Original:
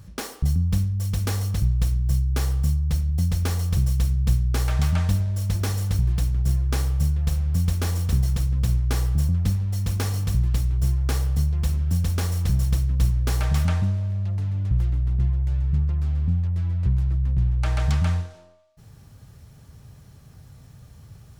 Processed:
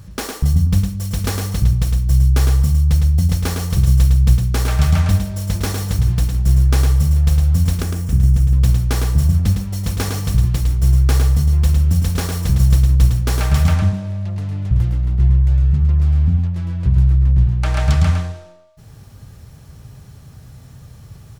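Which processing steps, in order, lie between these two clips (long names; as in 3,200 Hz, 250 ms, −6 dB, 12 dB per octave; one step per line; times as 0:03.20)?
0:07.82–0:08.53: graphic EQ with 10 bands 500 Hz −5 dB, 1,000 Hz −8 dB, 2,000 Hz −4 dB, 4,000 Hz −11 dB, 16,000 Hz −8 dB
single-tap delay 108 ms −5.5 dB
level +6 dB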